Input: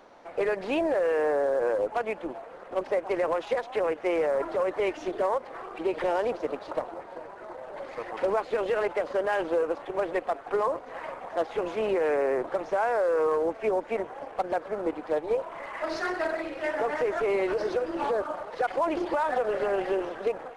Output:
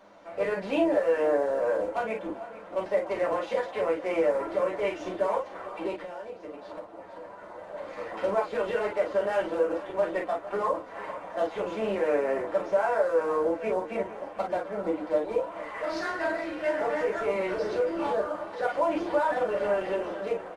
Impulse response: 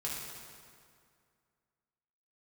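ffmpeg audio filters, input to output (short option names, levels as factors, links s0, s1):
-filter_complex "[0:a]aecho=1:1:451:0.158[s0];[1:a]atrim=start_sample=2205,afade=t=out:st=0.13:d=0.01,atrim=end_sample=6174,asetrate=61740,aresample=44100[s1];[s0][s1]afir=irnorm=-1:irlink=0,asplit=3[s2][s3][s4];[s2]afade=t=out:st=5.95:d=0.02[s5];[s3]acompressor=threshold=0.00891:ratio=4,afade=t=in:st=5.95:d=0.02,afade=t=out:st=7.56:d=0.02[s6];[s4]afade=t=in:st=7.56:d=0.02[s7];[s5][s6][s7]amix=inputs=3:normalize=0,volume=1.26"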